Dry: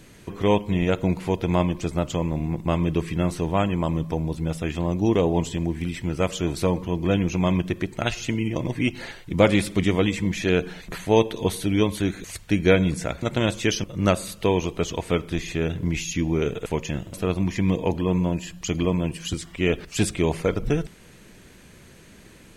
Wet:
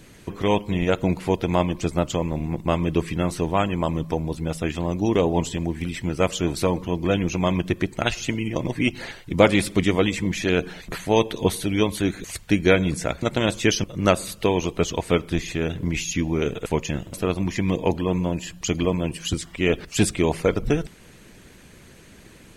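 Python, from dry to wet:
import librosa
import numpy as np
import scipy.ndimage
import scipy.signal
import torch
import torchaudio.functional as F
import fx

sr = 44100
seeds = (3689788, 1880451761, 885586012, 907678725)

y = fx.hpss(x, sr, part='percussive', gain_db=6)
y = y * librosa.db_to_amplitude(-2.5)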